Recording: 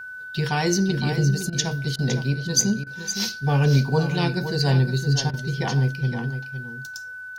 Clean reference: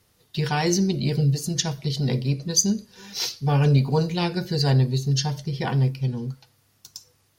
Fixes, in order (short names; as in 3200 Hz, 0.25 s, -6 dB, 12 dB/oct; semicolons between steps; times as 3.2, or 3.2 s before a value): notch 1500 Hz, Q 30; interpolate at 1.5/1.96/2.84/5.31, 25 ms; inverse comb 0.512 s -9.5 dB